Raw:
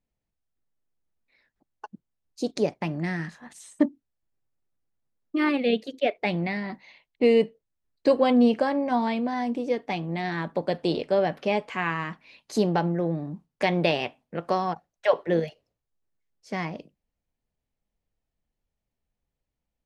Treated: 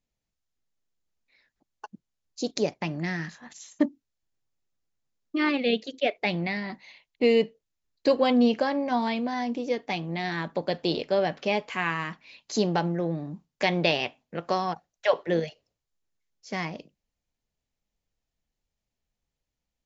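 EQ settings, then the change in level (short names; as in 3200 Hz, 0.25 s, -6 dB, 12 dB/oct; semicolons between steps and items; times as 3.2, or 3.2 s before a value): brick-wall FIR low-pass 7500 Hz; high shelf 2900 Hz +9 dB; -2.0 dB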